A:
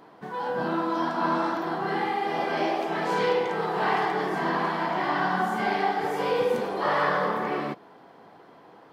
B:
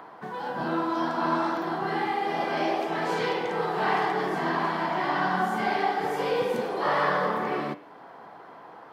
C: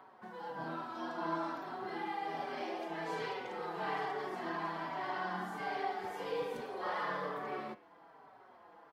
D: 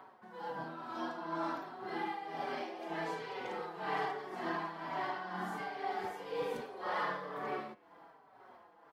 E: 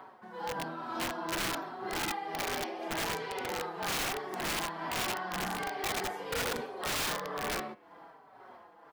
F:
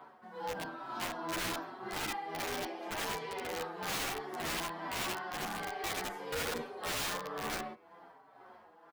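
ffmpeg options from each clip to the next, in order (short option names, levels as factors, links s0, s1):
-filter_complex "[0:a]bandreject=f=98.82:t=h:w=4,bandreject=f=197.64:t=h:w=4,bandreject=f=296.46:t=h:w=4,bandreject=f=395.28:t=h:w=4,bandreject=f=494.1:t=h:w=4,bandreject=f=592.92:t=h:w=4,bandreject=f=691.74:t=h:w=4,bandreject=f=790.56:t=h:w=4,bandreject=f=889.38:t=h:w=4,bandreject=f=988.2:t=h:w=4,bandreject=f=1087.02:t=h:w=4,bandreject=f=1185.84:t=h:w=4,bandreject=f=1284.66:t=h:w=4,bandreject=f=1383.48:t=h:w=4,bandreject=f=1482.3:t=h:w=4,bandreject=f=1581.12:t=h:w=4,bandreject=f=1679.94:t=h:w=4,bandreject=f=1778.76:t=h:w=4,bandreject=f=1877.58:t=h:w=4,bandreject=f=1976.4:t=h:w=4,bandreject=f=2075.22:t=h:w=4,bandreject=f=2174.04:t=h:w=4,bandreject=f=2272.86:t=h:w=4,bandreject=f=2371.68:t=h:w=4,bandreject=f=2470.5:t=h:w=4,bandreject=f=2569.32:t=h:w=4,bandreject=f=2668.14:t=h:w=4,bandreject=f=2766.96:t=h:w=4,bandreject=f=2865.78:t=h:w=4,bandreject=f=2964.6:t=h:w=4,bandreject=f=3063.42:t=h:w=4,bandreject=f=3162.24:t=h:w=4,bandreject=f=3261.06:t=h:w=4,bandreject=f=3359.88:t=h:w=4,bandreject=f=3458.7:t=h:w=4,bandreject=f=3557.52:t=h:w=4,acrossover=split=210|700|1800[s0][s1][s2][s3];[s2]acompressor=mode=upward:threshold=0.0126:ratio=2.5[s4];[s0][s1][s4][s3]amix=inputs=4:normalize=0"
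-filter_complex "[0:a]asubboost=boost=3.5:cutoff=66,asplit=2[s0][s1];[s1]adelay=4.8,afreqshift=-1.2[s2];[s0][s2]amix=inputs=2:normalize=1,volume=0.355"
-af "tremolo=f=2:d=0.6,volume=1.33"
-af "aeval=exprs='(mod(42.2*val(0)+1,2)-1)/42.2':c=same,volume=1.78"
-filter_complex "[0:a]asplit=2[s0][s1];[s1]adelay=10.7,afreqshift=0.94[s2];[s0][s2]amix=inputs=2:normalize=1"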